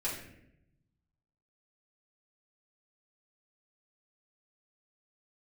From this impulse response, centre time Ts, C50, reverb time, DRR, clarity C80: 40 ms, 4.5 dB, 0.80 s, −8.5 dB, 7.5 dB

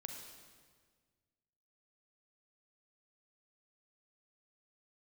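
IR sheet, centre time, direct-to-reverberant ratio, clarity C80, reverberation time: 54 ms, 2.5 dB, 5.0 dB, 1.6 s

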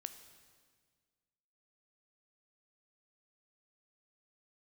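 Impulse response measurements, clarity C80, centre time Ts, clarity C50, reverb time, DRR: 12.0 dB, 16 ms, 11.0 dB, 1.7 s, 9.0 dB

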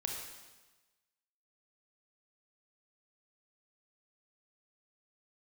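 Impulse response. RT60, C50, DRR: 1.2 s, 2.0 dB, 0.5 dB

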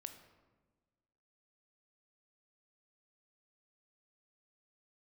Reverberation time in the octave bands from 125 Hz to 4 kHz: 1.7, 1.7, 1.5, 1.2, 1.0, 0.75 seconds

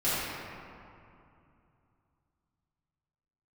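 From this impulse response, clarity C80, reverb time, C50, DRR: −2.0 dB, 2.6 s, −4.5 dB, −14.5 dB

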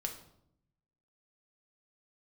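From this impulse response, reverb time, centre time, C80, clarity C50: 0.75 s, 17 ms, 12.5 dB, 9.0 dB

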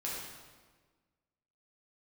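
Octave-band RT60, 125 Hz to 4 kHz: 1.7, 1.7, 1.5, 1.4, 1.3, 1.1 seconds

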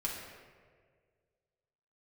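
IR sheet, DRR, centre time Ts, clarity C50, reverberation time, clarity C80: −4.0 dB, 70 ms, 2.0 dB, 1.8 s, 4.0 dB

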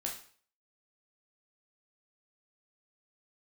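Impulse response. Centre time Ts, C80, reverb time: 26 ms, 11.5 dB, 0.45 s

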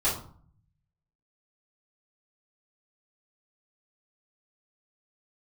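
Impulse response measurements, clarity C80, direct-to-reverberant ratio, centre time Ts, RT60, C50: 11.0 dB, −10.0 dB, 33 ms, 0.50 s, 6.0 dB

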